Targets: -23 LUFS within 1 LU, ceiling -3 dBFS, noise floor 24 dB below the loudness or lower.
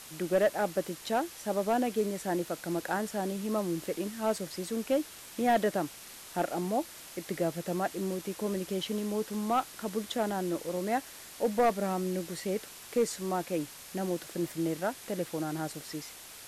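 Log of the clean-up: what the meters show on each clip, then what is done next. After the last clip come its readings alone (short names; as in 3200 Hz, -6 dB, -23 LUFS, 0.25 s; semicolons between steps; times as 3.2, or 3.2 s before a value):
clipped 0.4%; flat tops at -19.5 dBFS; noise floor -48 dBFS; noise floor target -57 dBFS; loudness -32.5 LUFS; peak -19.5 dBFS; loudness target -23.0 LUFS
-> clip repair -19.5 dBFS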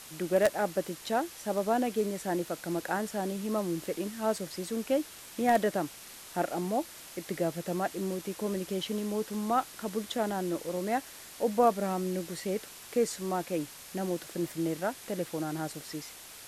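clipped 0.0%; noise floor -48 dBFS; noise floor target -56 dBFS
-> denoiser 8 dB, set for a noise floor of -48 dBFS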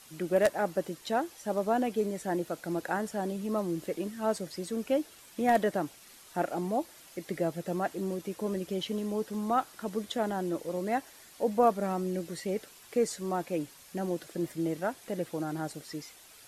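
noise floor -54 dBFS; noise floor target -57 dBFS
-> denoiser 6 dB, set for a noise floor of -54 dBFS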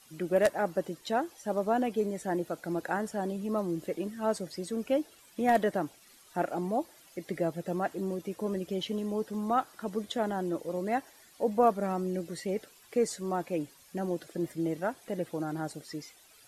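noise floor -58 dBFS; loudness -32.5 LUFS; peak -11.0 dBFS; loudness target -23.0 LUFS
-> gain +9.5 dB; limiter -3 dBFS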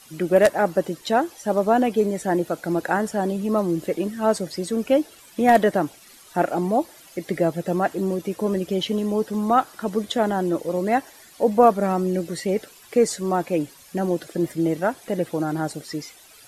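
loudness -23.0 LUFS; peak -3.0 dBFS; noise floor -49 dBFS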